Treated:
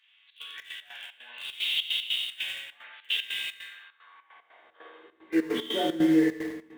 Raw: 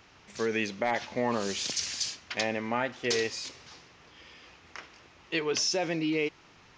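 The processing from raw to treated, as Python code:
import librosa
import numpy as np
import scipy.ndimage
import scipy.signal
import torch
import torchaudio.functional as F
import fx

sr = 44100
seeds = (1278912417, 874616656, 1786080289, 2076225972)

p1 = fx.freq_compress(x, sr, knee_hz=1100.0, ratio=1.5)
p2 = p1 + fx.echo_feedback(p1, sr, ms=91, feedback_pct=59, wet_db=-5.5, dry=0)
p3 = fx.filter_sweep_highpass(p2, sr, from_hz=2900.0, to_hz=240.0, start_s=3.2, end_s=5.47, q=3.5)
p4 = fx.low_shelf(p3, sr, hz=120.0, db=9.0)
p5 = fx.comb_fb(p4, sr, f0_hz=80.0, decay_s=0.4, harmonics='all', damping=0.0, mix_pct=80)
p6 = fx.quant_dither(p5, sr, seeds[0], bits=6, dither='none')
p7 = p5 + (p6 * 10.0 ** (-10.0 / 20.0))
p8 = fx.rev_gated(p7, sr, seeds[1], gate_ms=270, shape='falling', drr_db=0.0)
y = fx.step_gate(p8, sr, bpm=150, pattern='xxx.xx.x.xx.', floor_db=-12.0, edge_ms=4.5)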